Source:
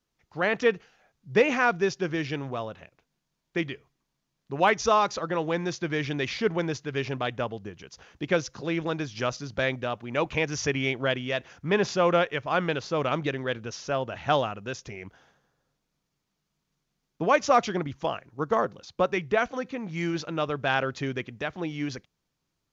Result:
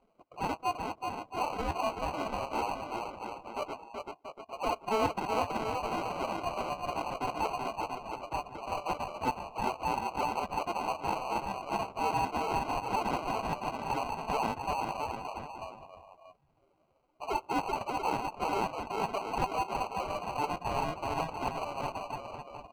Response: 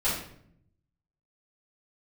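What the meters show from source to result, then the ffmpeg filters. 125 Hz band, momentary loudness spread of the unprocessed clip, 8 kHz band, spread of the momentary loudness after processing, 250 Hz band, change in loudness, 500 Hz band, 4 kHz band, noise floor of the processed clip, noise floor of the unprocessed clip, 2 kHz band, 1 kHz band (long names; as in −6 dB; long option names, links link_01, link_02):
−10.0 dB, 11 LU, can't be measured, 8 LU, −8.5 dB, −6.5 dB, −9.5 dB, −8.0 dB, −68 dBFS, −81 dBFS, −11.5 dB, −1.0 dB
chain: -filter_complex "[0:a]areverse,acompressor=threshold=-30dB:ratio=16,areverse,equalizer=frequency=1200:width_type=o:width=2.7:gain=9,aecho=1:1:380|684|927.2|1122|1277:0.631|0.398|0.251|0.158|0.1,acompressor=mode=upward:threshold=-40dB:ratio=2.5,flanger=delay=4.7:depth=8.9:regen=45:speed=0.21:shape=sinusoidal,acrusher=bits=2:mode=log:mix=0:aa=0.000001,highpass=frequency=370:width_type=q:width=0.5412,highpass=frequency=370:width_type=q:width=1.307,lowpass=frequency=2900:width_type=q:width=0.5176,lowpass=frequency=2900:width_type=q:width=0.7071,lowpass=frequency=2900:width_type=q:width=1.932,afreqshift=270,acrusher=samples=25:mix=1:aa=0.000001,afftdn=noise_reduction=12:noise_floor=-53,asplit=2[link_01][link_02];[link_02]highpass=frequency=720:poles=1,volume=8dB,asoftclip=type=tanh:threshold=-16dB[link_03];[link_01][link_03]amix=inputs=2:normalize=0,lowpass=frequency=1600:poles=1,volume=-6dB"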